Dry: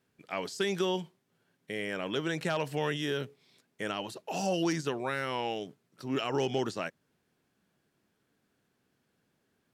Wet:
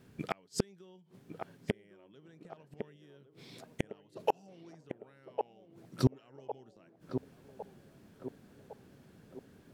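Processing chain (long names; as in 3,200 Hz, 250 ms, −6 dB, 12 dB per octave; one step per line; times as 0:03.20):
low-shelf EQ 380 Hz +11.5 dB
gate with flip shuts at −23 dBFS, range −41 dB
on a send: feedback echo with a band-pass in the loop 1,106 ms, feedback 57%, band-pass 530 Hz, level −4.5 dB
on the sum: level +9.5 dB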